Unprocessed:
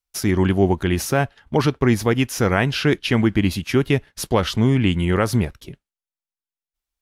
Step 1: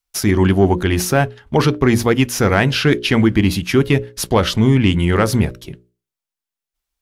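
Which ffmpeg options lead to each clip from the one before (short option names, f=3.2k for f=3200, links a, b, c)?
-af "bandreject=f=60:t=h:w=6,bandreject=f=120:t=h:w=6,bandreject=f=180:t=h:w=6,bandreject=f=240:t=h:w=6,bandreject=f=300:t=h:w=6,bandreject=f=360:t=h:w=6,bandreject=f=420:t=h:w=6,bandreject=f=480:t=h:w=6,bandreject=f=540:t=h:w=6,bandreject=f=600:t=h:w=6,acontrast=34"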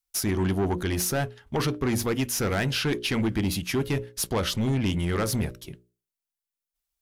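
-af "highshelf=f=6k:g=8.5,asoftclip=type=tanh:threshold=-11dB,volume=-8.5dB"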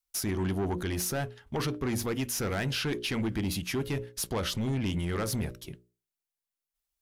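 -af "alimiter=limit=-23dB:level=0:latency=1:release=66,volume=-2dB"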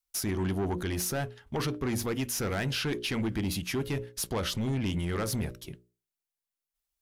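-af anull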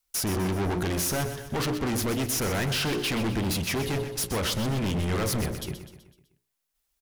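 -filter_complex "[0:a]asoftclip=type=hard:threshold=-34.5dB,asplit=2[a][b];[b]aecho=0:1:126|252|378|504|630:0.299|0.149|0.0746|0.0373|0.0187[c];[a][c]amix=inputs=2:normalize=0,volume=8.5dB"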